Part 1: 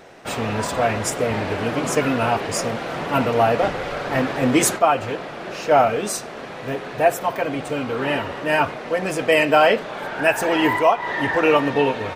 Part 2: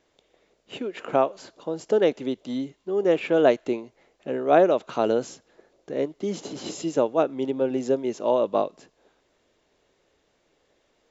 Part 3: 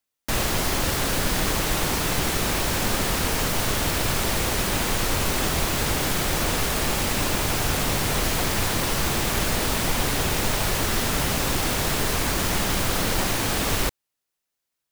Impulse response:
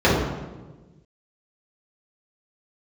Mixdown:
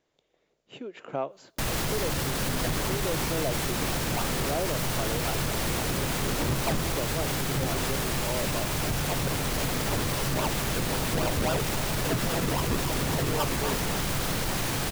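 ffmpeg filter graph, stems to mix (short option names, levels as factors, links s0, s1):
-filter_complex "[0:a]highpass=f=1200:p=1,acrusher=samples=41:mix=1:aa=0.000001:lfo=1:lforange=41:lforate=3.7,adelay=1850,volume=1.06[s0];[1:a]volume=0.398,asplit=2[s1][s2];[2:a]adelay=1300,volume=0.794[s3];[s2]apad=whole_len=617484[s4];[s0][s4]sidechaincompress=threshold=0.02:ratio=8:attack=16:release=862[s5];[s5][s1][s3]amix=inputs=3:normalize=0,asoftclip=type=tanh:threshold=0.168,equalizer=f=140:t=o:w=0.39:g=8,alimiter=limit=0.1:level=0:latency=1:release=96"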